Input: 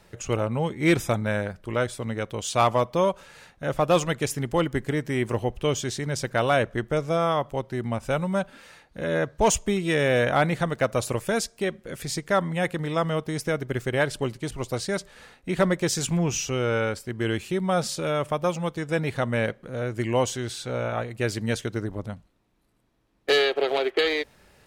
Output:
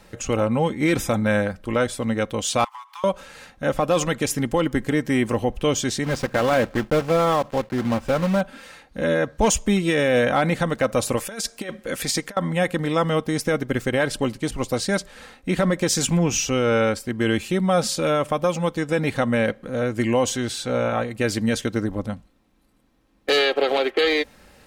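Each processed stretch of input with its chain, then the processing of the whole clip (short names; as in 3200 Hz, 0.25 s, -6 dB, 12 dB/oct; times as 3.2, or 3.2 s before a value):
2.64–3.04 median filter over 9 samples + steep high-pass 850 Hz 96 dB/oct + compressor 20:1, threshold -39 dBFS
6.04–8.42 block floating point 3-bit + LPF 2200 Hz 6 dB/oct
11.17–12.37 low shelf 300 Hz -9 dB + negative-ratio compressor -32 dBFS, ratio -0.5
whole clip: bell 220 Hz +2 dB; comb 3.8 ms, depth 38%; limiter -15.5 dBFS; gain +5 dB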